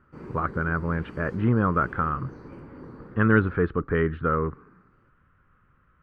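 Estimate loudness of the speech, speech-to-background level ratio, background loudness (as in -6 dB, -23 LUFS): -25.5 LUFS, 18.0 dB, -43.5 LUFS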